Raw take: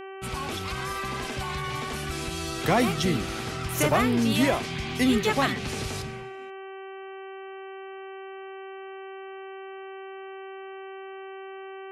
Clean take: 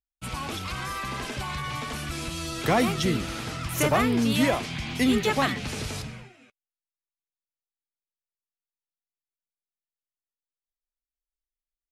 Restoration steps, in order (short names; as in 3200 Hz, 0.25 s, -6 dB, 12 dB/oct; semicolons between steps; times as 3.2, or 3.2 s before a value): de-hum 385.4 Hz, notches 8